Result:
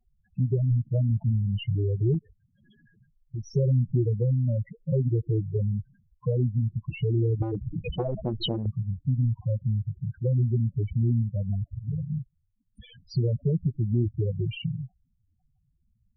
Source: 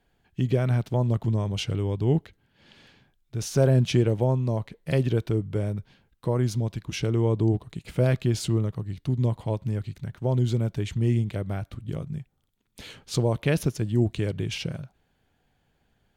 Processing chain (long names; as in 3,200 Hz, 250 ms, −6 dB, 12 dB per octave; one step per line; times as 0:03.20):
gain on one half-wave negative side −3 dB
treble cut that deepens with the level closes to 500 Hz, closed at −19.5 dBFS
spectral peaks only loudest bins 4
0:02.14–0:03.48: dynamic equaliser 110 Hz, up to −7 dB, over −44 dBFS, Q 1.1
downward compressor 2.5 to 1, threshold −27 dBFS, peak gain reduction 6 dB
0:07.42–0:08.66: every bin compressed towards the loudest bin 10 to 1
level +5 dB